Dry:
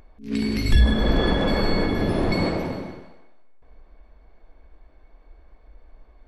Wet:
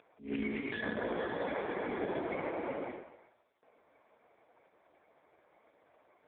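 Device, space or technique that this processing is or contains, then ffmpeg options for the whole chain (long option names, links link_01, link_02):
voicemail: -filter_complex "[0:a]asettb=1/sr,asplit=3[link_01][link_02][link_03];[link_01]atrim=end=0.654[link_04];[link_02]atrim=start=0.65:end=1.46,asetpts=PTS-STARTPTS,afade=type=in:duration=0.004:curve=qsin,afade=type=out:start_time=0.806:duration=0.004:curve=qsin,asplit=2[link_05][link_06];[link_06]adelay=17,volume=-5.5dB[link_07];[link_05][link_07]amix=inputs=2:normalize=0,atrim=end_sample=35721[link_08];[link_03]atrim=start=1.456[link_09];[link_04][link_08]acrossfade=duration=0.004:curve1=hsin:curve2=qsin[link_10];[link_10][link_09]acrossfade=duration=0.004:curve1=qsin:curve2=hsin,highpass=390,lowpass=3000,acompressor=threshold=-30dB:ratio=10,volume=1dB" -ar 8000 -c:a libopencore_amrnb -b:a 4750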